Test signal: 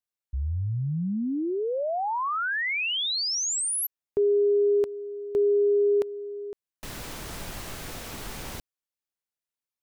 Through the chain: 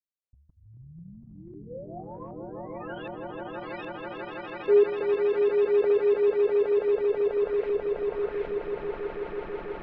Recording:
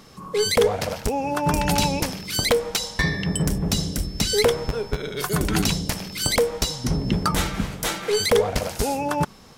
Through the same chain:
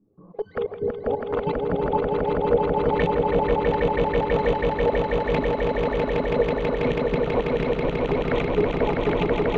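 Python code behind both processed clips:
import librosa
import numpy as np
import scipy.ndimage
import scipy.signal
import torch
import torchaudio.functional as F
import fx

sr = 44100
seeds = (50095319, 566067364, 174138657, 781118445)

y = fx.reverse_delay_fb(x, sr, ms=246, feedback_pct=81, wet_db=-2)
y = fx.dereverb_blind(y, sr, rt60_s=0.53)
y = scipy.signal.sosfilt(scipy.signal.butter(4, 4500.0, 'lowpass', fs=sr, output='sos'), y)
y = fx.low_shelf(y, sr, hz=220.0, db=-2.5)
y = fx.level_steps(y, sr, step_db=20)
y = (np.mod(10.0 ** (11.5 / 20.0) * y + 1.0, 2.0) - 1.0) / 10.0 ** (11.5 / 20.0)
y = fx.env_flanger(y, sr, rest_ms=10.2, full_db=-21.0)
y = fx.filter_lfo_lowpass(y, sr, shape='saw_up', hz=1.3, low_hz=270.0, high_hz=2500.0, q=2.8)
y = fx.echo_swell(y, sr, ms=163, loudest=8, wet_db=-3)
y = F.gain(torch.from_numpy(y), -4.0).numpy()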